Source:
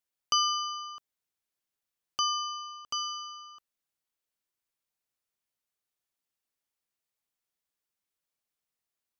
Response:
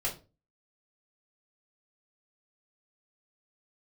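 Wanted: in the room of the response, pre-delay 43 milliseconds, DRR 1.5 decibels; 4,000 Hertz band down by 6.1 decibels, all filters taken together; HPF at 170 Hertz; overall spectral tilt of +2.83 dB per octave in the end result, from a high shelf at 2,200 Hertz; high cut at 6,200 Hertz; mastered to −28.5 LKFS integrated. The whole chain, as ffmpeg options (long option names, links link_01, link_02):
-filter_complex "[0:a]highpass=170,lowpass=6200,highshelf=frequency=2200:gain=-4,equalizer=frequency=4000:width_type=o:gain=-4.5,asplit=2[link_01][link_02];[1:a]atrim=start_sample=2205,adelay=43[link_03];[link_02][link_03]afir=irnorm=-1:irlink=0,volume=-6.5dB[link_04];[link_01][link_04]amix=inputs=2:normalize=0,volume=6dB"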